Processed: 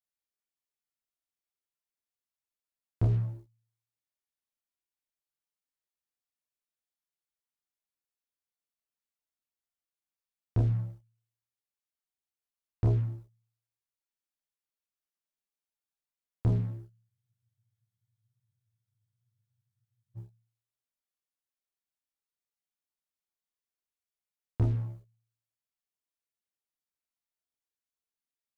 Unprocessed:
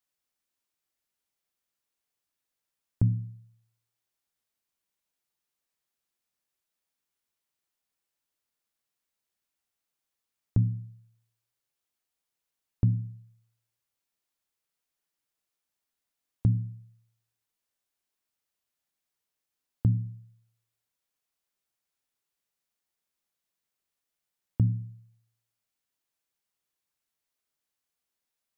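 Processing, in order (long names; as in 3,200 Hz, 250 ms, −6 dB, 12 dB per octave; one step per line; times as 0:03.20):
leveller curve on the samples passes 3
multi-voice chorus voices 6, 0.46 Hz, delay 28 ms, depth 2.6 ms
frozen spectrum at 0:17.12, 3.04 s
level −2.5 dB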